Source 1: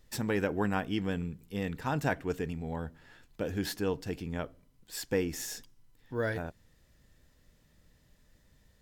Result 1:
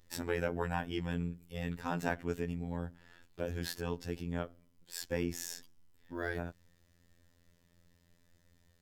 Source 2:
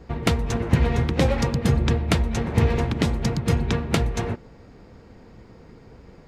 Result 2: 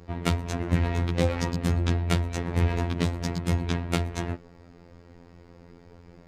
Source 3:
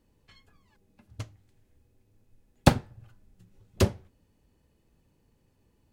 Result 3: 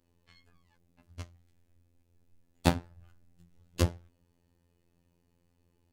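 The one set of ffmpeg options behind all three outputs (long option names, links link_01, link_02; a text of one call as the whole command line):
ffmpeg -i in.wav -af "acontrast=78,afftfilt=real='hypot(re,im)*cos(PI*b)':imag='0':win_size=2048:overlap=0.75,volume=-7dB" out.wav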